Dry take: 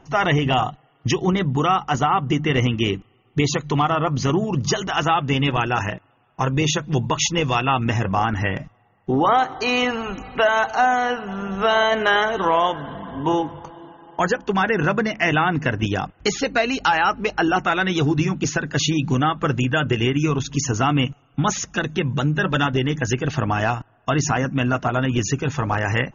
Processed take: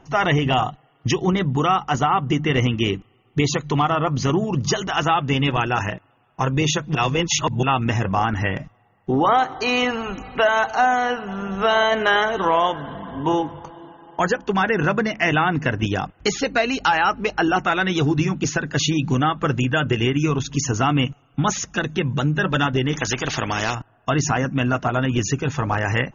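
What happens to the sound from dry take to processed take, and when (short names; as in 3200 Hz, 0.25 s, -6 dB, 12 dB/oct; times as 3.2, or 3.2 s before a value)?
6.95–7.63 reverse
22.93–23.75 spectral compressor 2:1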